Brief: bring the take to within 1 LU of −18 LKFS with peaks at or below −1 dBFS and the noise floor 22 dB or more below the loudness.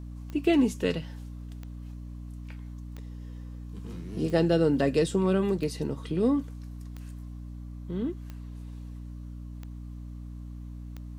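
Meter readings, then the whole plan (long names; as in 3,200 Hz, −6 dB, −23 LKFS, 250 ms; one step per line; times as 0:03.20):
number of clicks 9; mains hum 60 Hz; hum harmonics up to 300 Hz; level of the hum −37 dBFS; integrated loudness −27.5 LKFS; sample peak −11.5 dBFS; target loudness −18.0 LKFS
→ click removal
hum removal 60 Hz, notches 5
level +9.5 dB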